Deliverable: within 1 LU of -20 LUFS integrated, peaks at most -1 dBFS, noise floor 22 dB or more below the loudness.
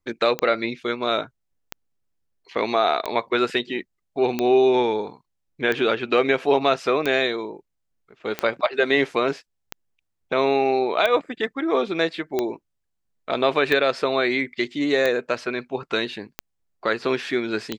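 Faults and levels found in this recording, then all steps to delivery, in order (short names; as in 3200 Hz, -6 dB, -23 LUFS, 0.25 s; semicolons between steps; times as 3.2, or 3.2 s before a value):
clicks 14; loudness -22.5 LUFS; peak -4.5 dBFS; loudness target -20.0 LUFS
-> de-click; gain +2.5 dB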